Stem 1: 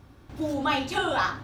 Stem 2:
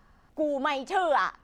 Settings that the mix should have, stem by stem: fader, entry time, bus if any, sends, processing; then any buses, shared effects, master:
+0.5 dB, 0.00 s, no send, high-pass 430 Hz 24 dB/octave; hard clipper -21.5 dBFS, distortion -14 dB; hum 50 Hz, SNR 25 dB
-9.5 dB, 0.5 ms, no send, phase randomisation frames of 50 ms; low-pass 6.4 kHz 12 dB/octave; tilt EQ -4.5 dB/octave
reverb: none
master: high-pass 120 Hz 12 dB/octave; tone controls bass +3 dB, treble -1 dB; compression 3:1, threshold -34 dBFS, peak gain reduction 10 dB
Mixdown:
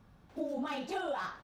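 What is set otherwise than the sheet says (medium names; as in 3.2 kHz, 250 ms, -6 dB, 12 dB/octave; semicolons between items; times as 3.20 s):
stem 1 +0.5 dB -> -10.0 dB; stem 2: polarity flipped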